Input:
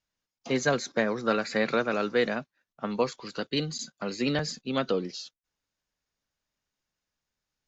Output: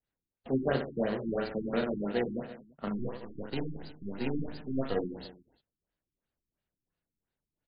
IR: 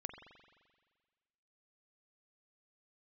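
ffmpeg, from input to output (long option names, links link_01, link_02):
-filter_complex "[0:a]asettb=1/sr,asplit=3[link_01][link_02][link_03];[link_01]atrim=end=2.944[link_04];[link_02]atrim=start=2.94:end=4.94,asetpts=PTS-STARTPTS,afade=type=in:duration=0.004:curve=qsin,afade=type=out:start_time=1.996:duration=0.004:curve=qsin,aeval=exprs='if(lt(val(0),0),0.447*val(0),val(0))':channel_layout=same[link_05];[link_03]atrim=start=4.936[link_06];[link_04][link_05]acrossfade=duration=0.004:curve1=hsin:curve2=qsin[link_07];[link_07][link_06]acrossfade=duration=0.004:curve1=qsin:curve2=hsin,aecho=1:1:30|72|130.8|213.1|328.4:0.631|0.398|0.251|0.158|0.1,adynamicequalizer=threshold=0.00794:dfrequency=1500:dqfactor=1.2:tfrequency=1500:tqfactor=1.2:attack=5:release=100:ratio=0.375:range=3:mode=cutabove:tftype=bell,asplit=2[link_08][link_09];[link_09]acrusher=samples=37:mix=1:aa=0.000001,volume=-4dB[link_10];[link_08][link_10]amix=inputs=2:normalize=0,afftfilt=real='re*lt(b*sr/1024,350*pow(5000/350,0.5+0.5*sin(2*PI*2.9*pts/sr)))':imag='im*lt(b*sr/1024,350*pow(5000/350,0.5+0.5*sin(2*PI*2.9*pts/sr)))':win_size=1024:overlap=0.75,volume=-7dB"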